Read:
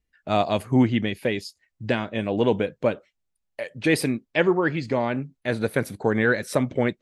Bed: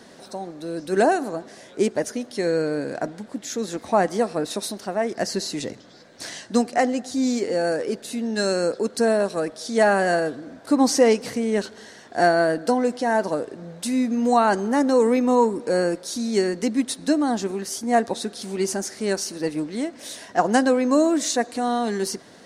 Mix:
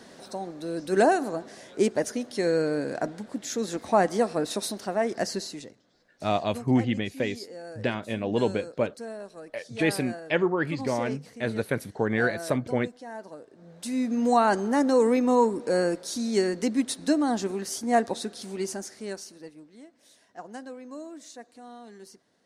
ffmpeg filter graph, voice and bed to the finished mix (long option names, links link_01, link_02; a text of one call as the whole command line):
ffmpeg -i stem1.wav -i stem2.wav -filter_complex "[0:a]adelay=5950,volume=-4dB[link_01];[1:a]volume=13.5dB,afade=type=out:start_time=5.14:duration=0.59:silence=0.149624,afade=type=in:start_time=13.51:duration=0.68:silence=0.16788,afade=type=out:start_time=17.97:duration=1.59:silence=0.112202[link_02];[link_01][link_02]amix=inputs=2:normalize=0" out.wav